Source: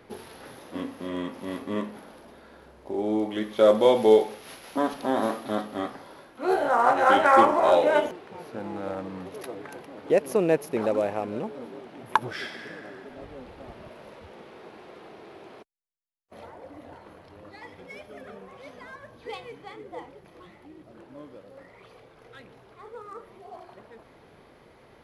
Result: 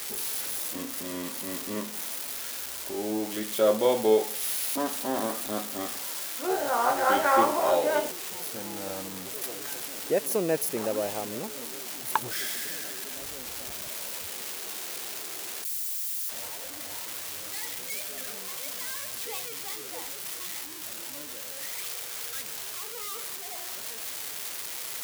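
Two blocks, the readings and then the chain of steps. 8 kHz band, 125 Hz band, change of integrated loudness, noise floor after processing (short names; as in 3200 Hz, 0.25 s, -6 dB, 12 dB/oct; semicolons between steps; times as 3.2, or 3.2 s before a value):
+18.5 dB, -4.5 dB, -5.5 dB, -39 dBFS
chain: switching spikes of -18.5 dBFS; gain -4.5 dB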